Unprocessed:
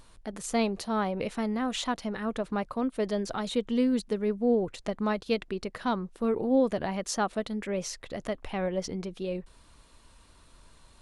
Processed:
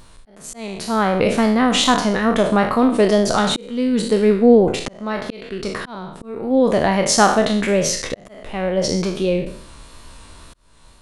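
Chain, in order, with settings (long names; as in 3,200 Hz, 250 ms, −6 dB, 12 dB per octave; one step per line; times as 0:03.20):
peak hold with a decay on every bin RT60 0.59 s
automatic gain control gain up to 6 dB
volume swells 704 ms
tape wow and flutter 29 cents
level +7.5 dB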